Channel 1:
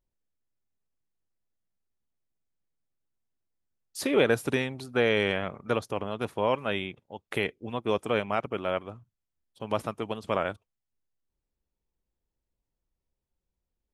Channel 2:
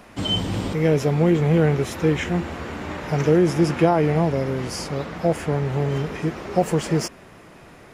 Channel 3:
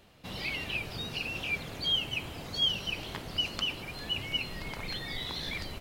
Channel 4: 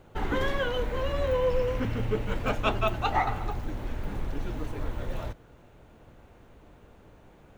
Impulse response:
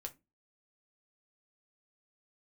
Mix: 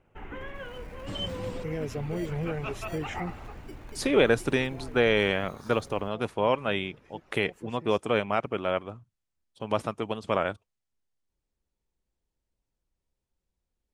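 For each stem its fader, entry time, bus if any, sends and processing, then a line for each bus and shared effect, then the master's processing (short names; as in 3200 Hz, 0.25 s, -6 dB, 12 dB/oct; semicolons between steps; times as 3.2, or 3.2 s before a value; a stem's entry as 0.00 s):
+1.5 dB, 0.00 s, no send, LPF 10000 Hz 24 dB/oct
-11.0 dB, 0.90 s, no send, reverb removal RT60 0.66 s; limiter -12.5 dBFS, peak gain reduction 7.5 dB; auto duck -15 dB, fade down 0.70 s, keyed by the first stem
-18.0 dB, 0.30 s, no send, tone controls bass +9 dB, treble +5 dB; sample-and-hold 17×
-12.5 dB, 0.00 s, no send, resonant high shelf 3300 Hz -7.5 dB, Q 3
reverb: off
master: dry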